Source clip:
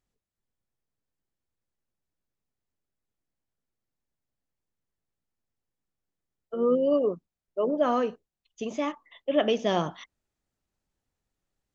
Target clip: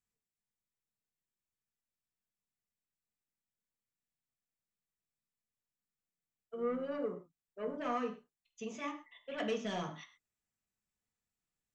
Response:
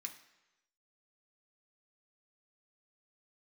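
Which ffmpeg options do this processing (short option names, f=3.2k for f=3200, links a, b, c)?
-filter_complex "[0:a]asoftclip=type=tanh:threshold=-18.5dB[a];[1:a]atrim=start_sample=2205,atrim=end_sample=6174[b];[a][b]afir=irnorm=-1:irlink=0,volume=-3dB"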